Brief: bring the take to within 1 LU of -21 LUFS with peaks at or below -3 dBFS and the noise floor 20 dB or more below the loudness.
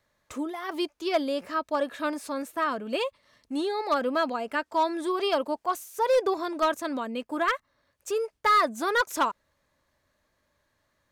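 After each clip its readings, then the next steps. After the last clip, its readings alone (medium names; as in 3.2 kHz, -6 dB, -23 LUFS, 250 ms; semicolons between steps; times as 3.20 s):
clipped samples 0.6%; clipping level -17.0 dBFS; loudness -28.0 LUFS; peak level -17.0 dBFS; loudness target -21.0 LUFS
-> clip repair -17 dBFS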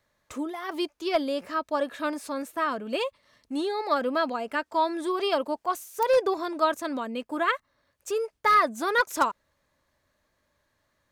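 clipped samples 0.0%; loudness -27.5 LUFS; peak level -8.0 dBFS; loudness target -21.0 LUFS
-> trim +6.5 dB; peak limiter -3 dBFS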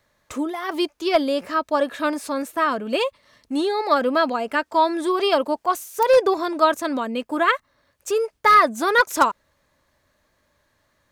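loudness -21.0 LUFS; peak level -3.0 dBFS; noise floor -68 dBFS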